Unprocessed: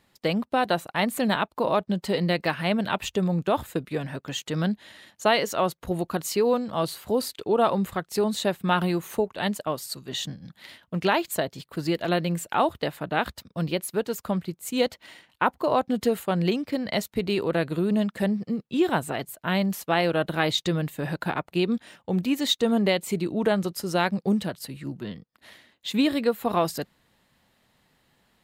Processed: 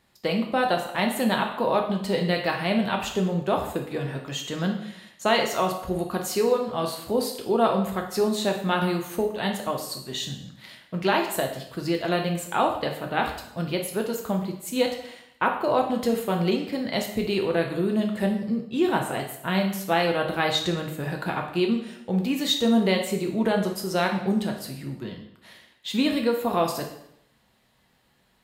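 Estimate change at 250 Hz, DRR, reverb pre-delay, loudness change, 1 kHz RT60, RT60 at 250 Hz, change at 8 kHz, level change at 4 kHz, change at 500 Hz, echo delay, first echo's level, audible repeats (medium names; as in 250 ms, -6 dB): +0.5 dB, 2.0 dB, 4 ms, +0.5 dB, 0.75 s, 0.70 s, +0.5 dB, +1.0 dB, +0.5 dB, no echo, no echo, no echo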